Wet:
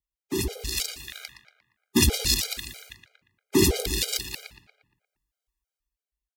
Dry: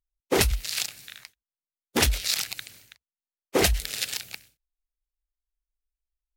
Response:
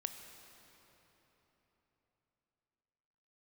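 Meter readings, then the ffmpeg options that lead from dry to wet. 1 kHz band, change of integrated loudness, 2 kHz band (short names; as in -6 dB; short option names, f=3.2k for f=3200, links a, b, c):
-7.0 dB, +0.5 dB, -3.0 dB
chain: -filter_complex "[0:a]highpass=46,acrossover=split=420|3000[a][b][c];[b]acompressor=threshold=-42dB:ratio=3[d];[a][d][c]amix=inputs=3:normalize=0,alimiter=limit=-12.5dB:level=0:latency=1:release=489,dynaudnorm=f=110:g=13:m=10dB,asplit=2[e][f];[f]adelay=117,lowpass=f=2.9k:p=1,volume=-6dB,asplit=2[g][h];[h]adelay=117,lowpass=f=2.9k:p=1,volume=0.55,asplit=2[i][j];[j]adelay=117,lowpass=f=2.9k:p=1,volume=0.55,asplit=2[k][l];[l]adelay=117,lowpass=f=2.9k:p=1,volume=0.55,asplit=2[m][n];[n]adelay=117,lowpass=f=2.9k:p=1,volume=0.55,asplit=2[o][p];[p]adelay=117,lowpass=f=2.9k:p=1,volume=0.55,asplit=2[q][r];[r]adelay=117,lowpass=f=2.9k:p=1,volume=0.55[s];[e][g][i][k][m][o][q][s]amix=inputs=8:normalize=0,afftfilt=real='re*gt(sin(2*PI*3.1*pts/sr)*(1-2*mod(floor(b*sr/1024/410),2)),0)':imag='im*gt(sin(2*PI*3.1*pts/sr)*(1-2*mod(floor(b*sr/1024/410),2)),0)':win_size=1024:overlap=0.75"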